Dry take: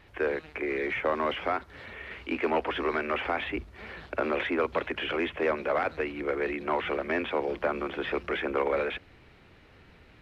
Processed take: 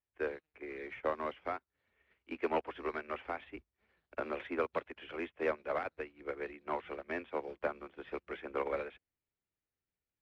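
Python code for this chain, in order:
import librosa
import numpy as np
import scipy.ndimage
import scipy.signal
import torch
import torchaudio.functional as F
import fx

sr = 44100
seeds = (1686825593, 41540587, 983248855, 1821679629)

y = fx.upward_expand(x, sr, threshold_db=-48.0, expansion=2.5)
y = y * librosa.db_to_amplitude(-4.5)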